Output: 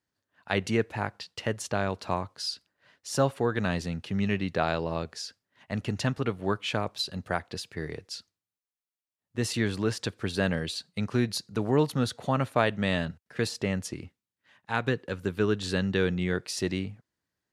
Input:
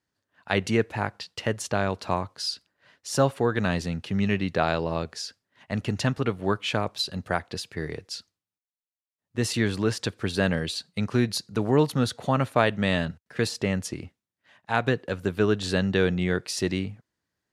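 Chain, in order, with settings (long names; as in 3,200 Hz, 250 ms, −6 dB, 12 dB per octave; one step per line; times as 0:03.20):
0:13.94–0:16.33: parametric band 670 Hz −6.5 dB 0.36 octaves
level −3 dB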